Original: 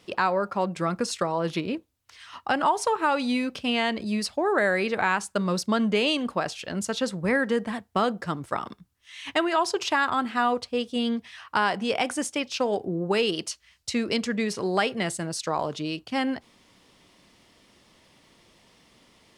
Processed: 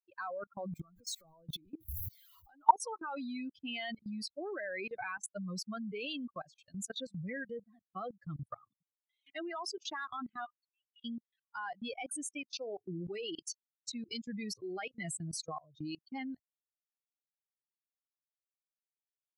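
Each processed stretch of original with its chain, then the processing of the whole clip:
0:00.65–0:02.68: converter with a step at zero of −30.5 dBFS + downward compressor 10 to 1, threshold −28 dBFS
0:10.45–0:11.05: high-pass filter 1,400 Hz 24 dB per octave + head-to-tape spacing loss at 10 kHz 28 dB
whole clip: spectral dynamics exaggerated over time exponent 3; output level in coarse steps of 23 dB; level +6.5 dB

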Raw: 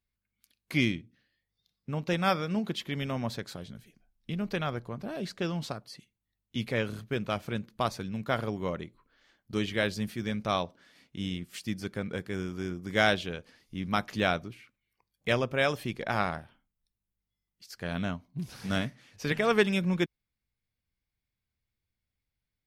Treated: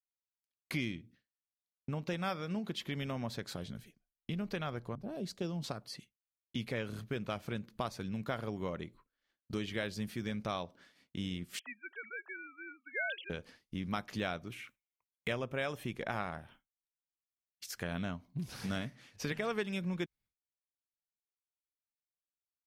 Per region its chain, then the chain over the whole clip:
0:04.95–0:05.64: parametric band 1,700 Hz −10.5 dB 1.7 octaves + multiband upward and downward expander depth 70%
0:11.59–0:13.30: three sine waves on the formant tracks + high-pass filter 1,200 Hz
0:14.47–0:17.98: parametric band 4,600 Hz −9.5 dB 0.3 octaves + one half of a high-frequency compander encoder only
whole clip: downward expander −52 dBFS; downward compressor 3 to 1, threshold −37 dBFS; level +1 dB

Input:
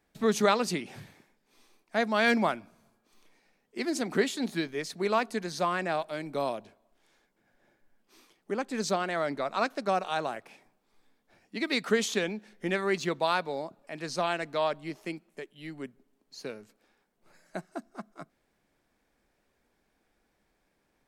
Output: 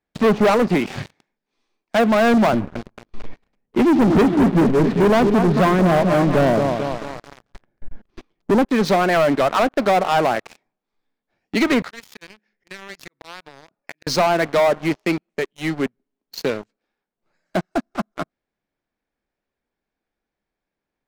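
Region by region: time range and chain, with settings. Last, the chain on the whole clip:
0:02.53–0:08.65: RIAA equalisation playback + feedback echo at a low word length 223 ms, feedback 55%, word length 8 bits, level −9 dB
0:11.82–0:14.07: volume swells 315 ms + downward compressor 16 to 1, threshold −40 dBFS + Chebyshev low-pass with heavy ripple 7,000 Hz, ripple 9 dB
whole clip: low-pass filter 5,400 Hz; treble cut that deepens with the level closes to 1,000 Hz, closed at −23.5 dBFS; leveller curve on the samples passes 5

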